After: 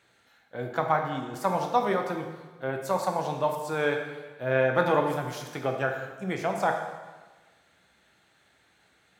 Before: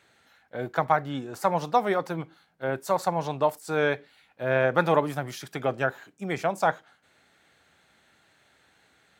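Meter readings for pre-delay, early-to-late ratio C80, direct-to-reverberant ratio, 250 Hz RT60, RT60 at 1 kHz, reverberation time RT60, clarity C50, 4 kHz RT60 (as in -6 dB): 5 ms, 7.0 dB, 3.0 dB, 1.3 s, 1.3 s, 1.3 s, 5.5 dB, 1.2 s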